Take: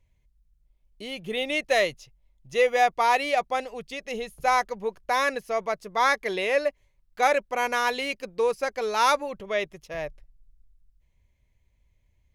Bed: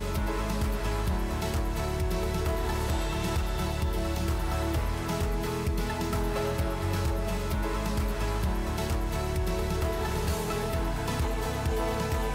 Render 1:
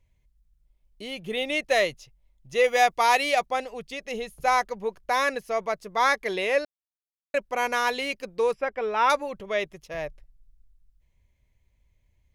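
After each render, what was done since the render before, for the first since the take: 2.64–3.46 high shelf 2800 Hz +7 dB; 6.65–7.34 mute; 8.53–9.1 polynomial smoothing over 25 samples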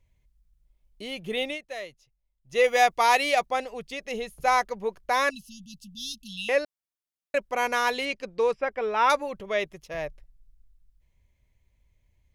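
1.45–2.58 dip -14.5 dB, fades 0.14 s; 5.3–6.49 brick-wall FIR band-stop 270–2600 Hz; 8.05–8.69 LPF 6800 Hz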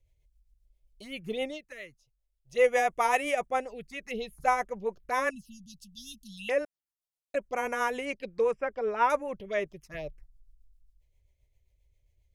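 envelope phaser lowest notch 210 Hz, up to 4300 Hz, full sweep at -24.5 dBFS; rotary speaker horn 7.5 Hz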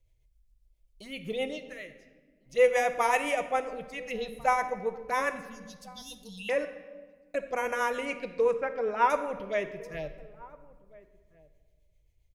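outdoor echo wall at 240 m, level -22 dB; shoebox room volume 1300 m³, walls mixed, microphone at 0.65 m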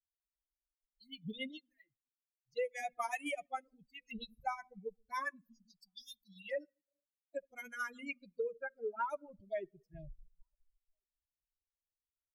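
per-bin expansion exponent 3; compressor 8:1, threshold -34 dBFS, peak gain reduction 15.5 dB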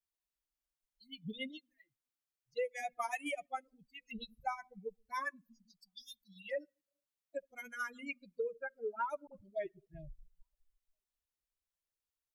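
9.27–9.87 dispersion highs, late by 51 ms, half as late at 360 Hz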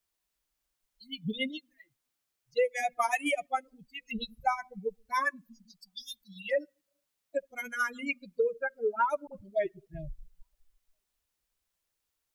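gain +9.5 dB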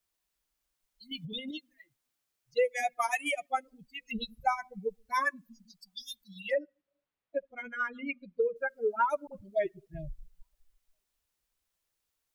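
1.11–1.51 negative-ratio compressor -39 dBFS; 2.87–3.5 low shelf 430 Hz -11 dB; 6.54–8.56 air absorption 350 m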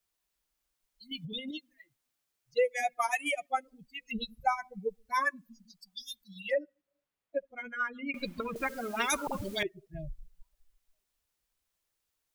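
8.14–9.63 spectral compressor 10:1

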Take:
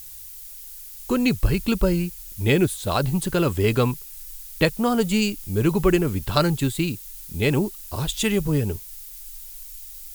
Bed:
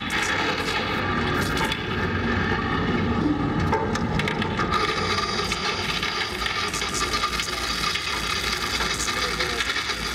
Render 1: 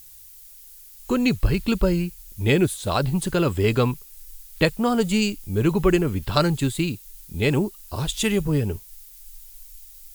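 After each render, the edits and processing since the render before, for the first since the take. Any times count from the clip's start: noise print and reduce 6 dB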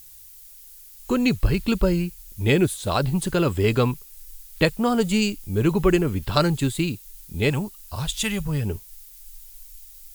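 7.5–8.65 bell 350 Hz -13 dB 1 oct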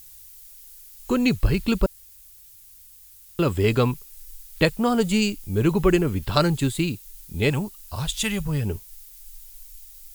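1.86–3.39 room tone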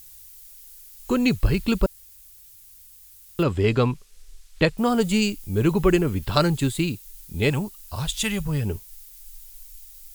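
3.43–4.78 air absorption 64 m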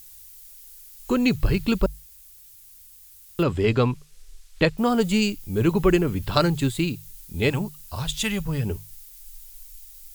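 notches 50/100/150 Hz; dynamic EQ 9300 Hz, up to -4 dB, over -49 dBFS, Q 1.6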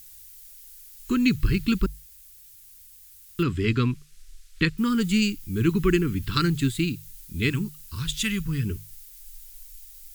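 Chebyshev band-stop 320–1400 Hz, order 2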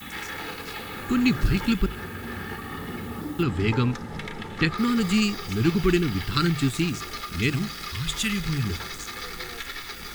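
add bed -11 dB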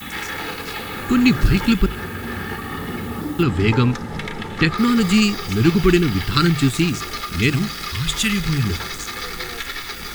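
gain +6.5 dB; limiter -1 dBFS, peak gain reduction 1 dB

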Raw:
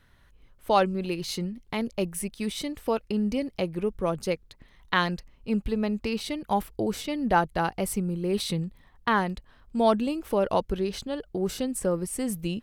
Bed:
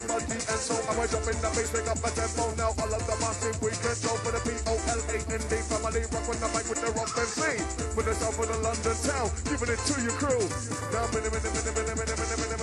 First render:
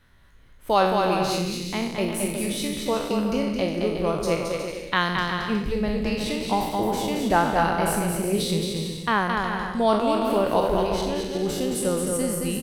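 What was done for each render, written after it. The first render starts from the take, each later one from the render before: spectral trails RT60 0.72 s; bouncing-ball echo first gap 0.22 s, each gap 0.65×, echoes 5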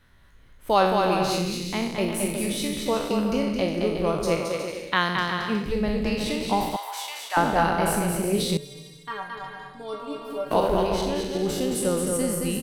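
4.4–5.69 HPF 120 Hz 6 dB/oct; 6.76–7.37 HPF 950 Hz 24 dB/oct; 8.57–10.51 metallic resonator 140 Hz, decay 0.3 s, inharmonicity 0.008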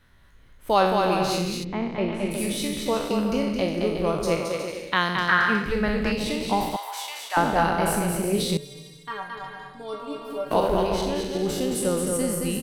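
1.63–2.3 LPF 1400 Hz -> 3500 Hz; 5.28–6.12 bell 1500 Hz +14.5 dB 0.8 oct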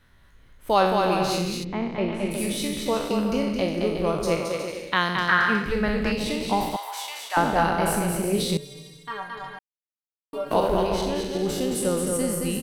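9.59–10.33 mute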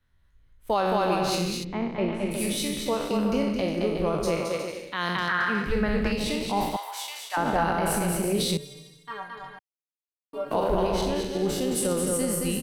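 limiter -15.5 dBFS, peak gain reduction 9 dB; three-band expander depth 40%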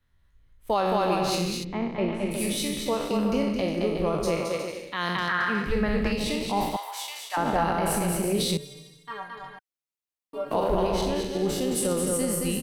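notch 1500 Hz, Q 21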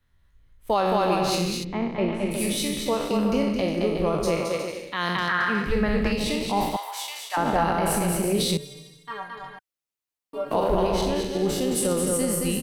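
gain +2 dB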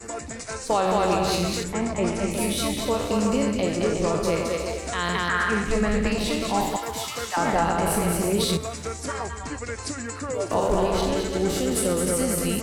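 add bed -4 dB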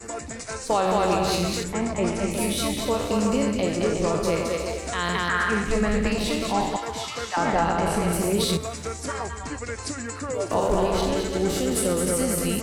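6.53–8.13 LPF 6900 Hz

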